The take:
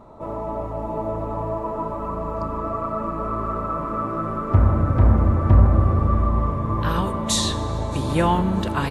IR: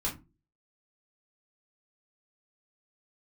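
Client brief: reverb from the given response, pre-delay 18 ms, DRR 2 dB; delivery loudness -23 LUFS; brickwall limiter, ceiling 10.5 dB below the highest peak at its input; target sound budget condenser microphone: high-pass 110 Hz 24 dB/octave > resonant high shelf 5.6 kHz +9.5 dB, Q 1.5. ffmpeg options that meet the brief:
-filter_complex "[0:a]alimiter=limit=0.224:level=0:latency=1,asplit=2[s0][s1];[1:a]atrim=start_sample=2205,adelay=18[s2];[s1][s2]afir=irnorm=-1:irlink=0,volume=0.473[s3];[s0][s3]amix=inputs=2:normalize=0,highpass=f=110:w=0.5412,highpass=f=110:w=1.3066,highshelf=f=5600:t=q:w=1.5:g=9.5,volume=0.841"

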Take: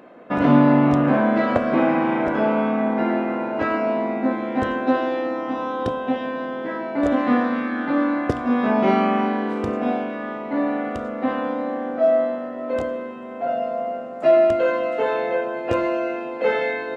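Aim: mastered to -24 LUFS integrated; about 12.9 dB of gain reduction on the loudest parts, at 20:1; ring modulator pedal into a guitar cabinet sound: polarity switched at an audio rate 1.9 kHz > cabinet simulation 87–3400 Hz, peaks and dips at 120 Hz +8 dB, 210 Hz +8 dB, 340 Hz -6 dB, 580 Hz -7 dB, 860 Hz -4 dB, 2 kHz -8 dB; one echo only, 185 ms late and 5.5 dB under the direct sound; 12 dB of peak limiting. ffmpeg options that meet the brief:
-af "acompressor=threshold=0.0708:ratio=20,alimiter=limit=0.0631:level=0:latency=1,aecho=1:1:185:0.531,aeval=exprs='val(0)*sgn(sin(2*PI*1900*n/s))':c=same,highpass=87,equalizer=f=120:t=q:w=4:g=8,equalizer=f=210:t=q:w=4:g=8,equalizer=f=340:t=q:w=4:g=-6,equalizer=f=580:t=q:w=4:g=-7,equalizer=f=860:t=q:w=4:g=-4,equalizer=f=2000:t=q:w=4:g=-8,lowpass=f=3400:w=0.5412,lowpass=f=3400:w=1.3066,volume=2.66"

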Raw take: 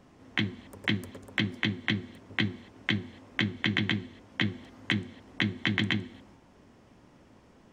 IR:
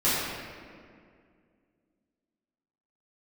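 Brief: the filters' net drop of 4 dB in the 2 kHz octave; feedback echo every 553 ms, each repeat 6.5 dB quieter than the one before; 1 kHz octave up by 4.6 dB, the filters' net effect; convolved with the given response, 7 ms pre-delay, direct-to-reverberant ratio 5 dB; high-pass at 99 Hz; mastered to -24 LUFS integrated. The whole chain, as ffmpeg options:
-filter_complex "[0:a]highpass=99,equalizer=f=1000:t=o:g=7.5,equalizer=f=2000:t=o:g=-6.5,aecho=1:1:553|1106|1659|2212|2765|3318:0.473|0.222|0.105|0.0491|0.0231|0.0109,asplit=2[s0][s1];[1:a]atrim=start_sample=2205,adelay=7[s2];[s1][s2]afir=irnorm=-1:irlink=0,volume=0.106[s3];[s0][s3]amix=inputs=2:normalize=0,volume=2.37"

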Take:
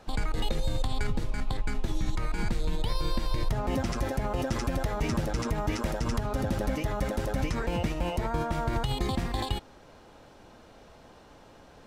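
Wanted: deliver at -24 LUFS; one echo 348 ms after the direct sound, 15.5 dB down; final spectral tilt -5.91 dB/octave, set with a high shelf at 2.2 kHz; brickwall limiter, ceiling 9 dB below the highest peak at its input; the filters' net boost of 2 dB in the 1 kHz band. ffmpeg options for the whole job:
-af "equalizer=f=1000:t=o:g=4,highshelf=f=2200:g=-7.5,alimiter=level_in=1.33:limit=0.0631:level=0:latency=1,volume=0.75,aecho=1:1:348:0.168,volume=4.22"

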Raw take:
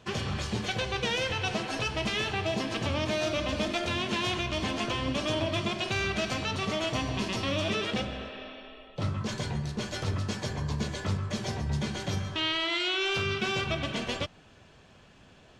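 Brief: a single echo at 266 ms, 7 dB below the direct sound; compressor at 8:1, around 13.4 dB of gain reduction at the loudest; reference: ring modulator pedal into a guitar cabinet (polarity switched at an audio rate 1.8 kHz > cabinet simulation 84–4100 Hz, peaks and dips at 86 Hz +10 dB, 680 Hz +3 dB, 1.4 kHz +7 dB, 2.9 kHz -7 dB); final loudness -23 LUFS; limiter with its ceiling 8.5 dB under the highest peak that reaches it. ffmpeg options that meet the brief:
-af "acompressor=threshold=0.01:ratio=8,alimiter=level_in=3.98:limit=0.0631:level=0:latency=1,volume=0.251,aecho=1:1:266:0.447,aeval=exprs='val(0)*sgn(sin(2*PI*1800*n/s))':c=same,highpass=84,equalizer=f=86:t=q:w=4:g=10,equalizer=f=680:t=q:w=4:g=3,equalizer=f=1400:t=q:w=4:g=7,equalizer=f=2900:t=q:w=4:g=-7,lowpass=f=4100:w=0.5412,lowpass=f=4100:w=1.3066,volume=9.44"

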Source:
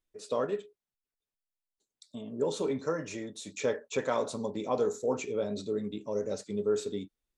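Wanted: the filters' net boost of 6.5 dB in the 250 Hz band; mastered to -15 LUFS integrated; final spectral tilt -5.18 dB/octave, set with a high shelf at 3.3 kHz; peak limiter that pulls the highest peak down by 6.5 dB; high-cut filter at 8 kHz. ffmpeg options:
-af "lowpass=8000,equalizer=f=250:t=o:g=8,highshelf=f=3300:g=4.5,volume=7.5,alimiter=limit=0.668:level=0:latency=1"

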